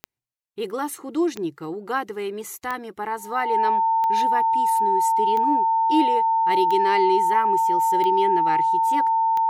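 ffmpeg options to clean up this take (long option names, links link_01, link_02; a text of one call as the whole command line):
ffmpeg -i in.wav -af "adeclick=threshold=4,bandreject=frequency=900:width=30" out.wav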